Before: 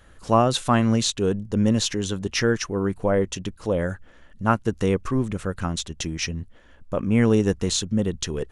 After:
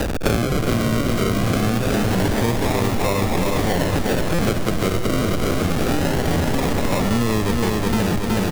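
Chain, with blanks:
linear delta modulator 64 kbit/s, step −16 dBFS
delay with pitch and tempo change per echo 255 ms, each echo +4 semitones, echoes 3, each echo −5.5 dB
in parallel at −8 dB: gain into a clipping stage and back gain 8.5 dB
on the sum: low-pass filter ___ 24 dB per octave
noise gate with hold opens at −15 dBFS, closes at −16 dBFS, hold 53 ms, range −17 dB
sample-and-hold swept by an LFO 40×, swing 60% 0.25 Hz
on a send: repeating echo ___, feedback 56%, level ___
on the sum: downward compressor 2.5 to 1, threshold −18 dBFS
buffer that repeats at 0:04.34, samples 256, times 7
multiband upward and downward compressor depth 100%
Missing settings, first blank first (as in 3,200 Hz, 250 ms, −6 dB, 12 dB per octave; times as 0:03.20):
3,400 Hz, 370 ms, −5.5 dB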